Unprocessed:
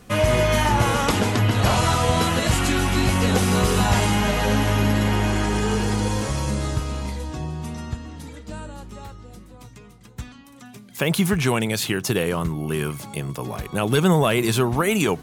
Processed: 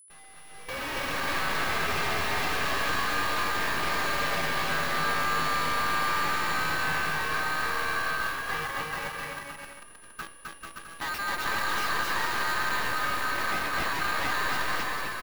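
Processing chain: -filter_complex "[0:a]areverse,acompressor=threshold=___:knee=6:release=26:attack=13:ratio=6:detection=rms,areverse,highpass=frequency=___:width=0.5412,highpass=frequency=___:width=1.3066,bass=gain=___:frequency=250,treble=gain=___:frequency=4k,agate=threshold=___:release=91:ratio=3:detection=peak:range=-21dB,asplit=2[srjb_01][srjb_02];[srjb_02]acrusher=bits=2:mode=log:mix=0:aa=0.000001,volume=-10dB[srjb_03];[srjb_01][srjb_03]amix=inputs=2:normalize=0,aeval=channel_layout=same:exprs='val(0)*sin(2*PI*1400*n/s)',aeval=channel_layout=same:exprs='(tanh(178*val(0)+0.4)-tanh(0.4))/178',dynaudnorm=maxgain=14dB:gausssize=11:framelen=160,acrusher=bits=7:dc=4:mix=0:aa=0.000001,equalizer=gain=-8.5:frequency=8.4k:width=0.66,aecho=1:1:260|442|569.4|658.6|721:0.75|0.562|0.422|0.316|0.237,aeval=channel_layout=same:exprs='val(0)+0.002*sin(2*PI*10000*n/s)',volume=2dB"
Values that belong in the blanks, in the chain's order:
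-29dB, 140, 140, 2, -12, -32dB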